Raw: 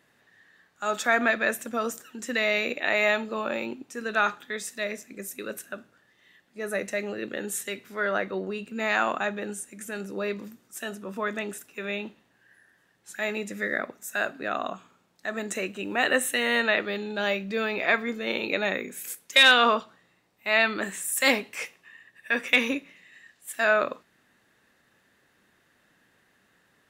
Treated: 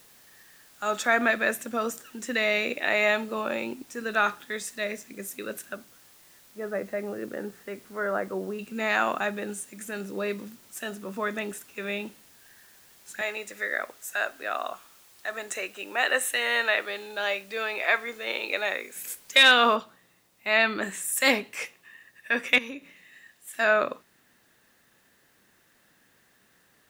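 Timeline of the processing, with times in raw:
5.76–8.59 s: Chebyshev low-pass 1.2 kHz
13.21–18.96 s: high-pass 540 Hz
19.76 s: noise floor step -56 dB -68 dB
22.58–23.53 s: compression 2.5:1, threshold -39 dBFS

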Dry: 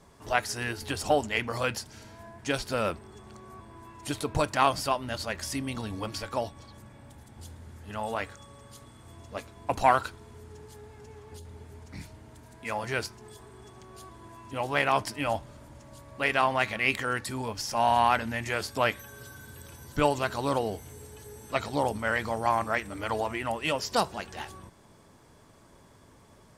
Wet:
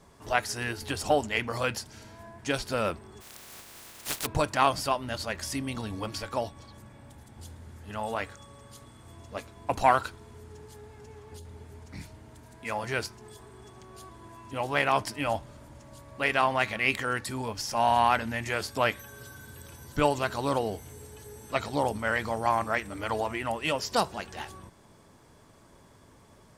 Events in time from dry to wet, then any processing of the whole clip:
3.20–4.25 s: spectral contrast reduction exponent 0.17

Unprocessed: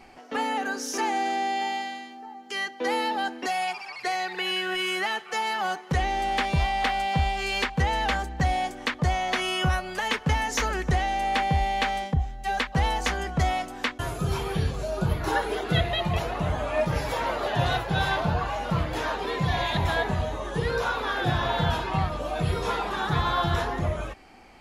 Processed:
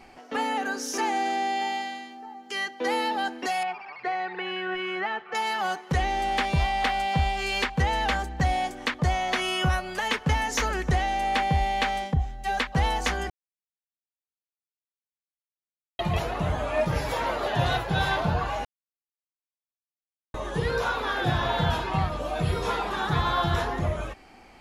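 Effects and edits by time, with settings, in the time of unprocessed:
3.63–5.35 s: low-pass 2 kHz
13.30–15.99 s: mute
18.65–20.34 s: mute

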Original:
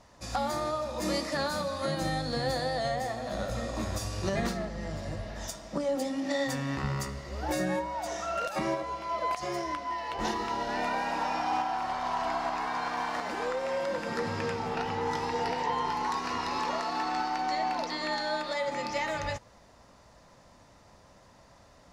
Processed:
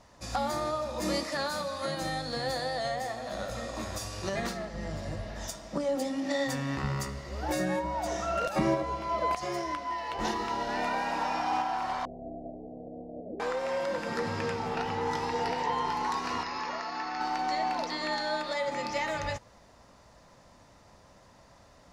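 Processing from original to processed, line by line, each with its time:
1.23–4.74 s: bass shelf 360 Hz -6.5 dB
7.84–9.39 s: bass shelf 400 Hz +9 dB
12.05–13.40 s: steep low-pass 630 Hz 72 dB/octave
16.43–17.21 s: rippled Chebyshev low-pass 6.9 kHz, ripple 6 dB

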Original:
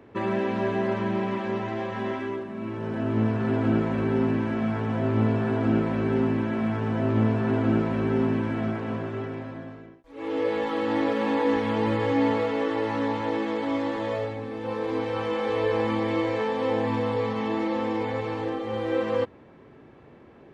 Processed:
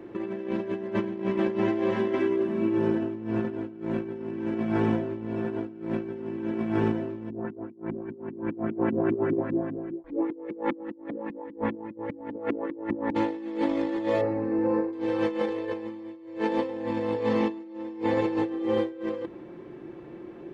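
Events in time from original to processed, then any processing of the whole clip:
7.30–13.15 s: LFO low-pass saw up 5 Hz 210–2300 Hz
14.21–14.93 s: boxcar filter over 13 samples
15.78–18.89 s: multi-head delay 61 ms, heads second and third, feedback 52%, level -20 dB
whole clip: peaking EQ 330 Hz +11 dB 0.65 oct; comb 5.7 ms, depth 46%; compressor with a negative ratio -24 dBFS, ratio -0.5; trim -4.5 dB

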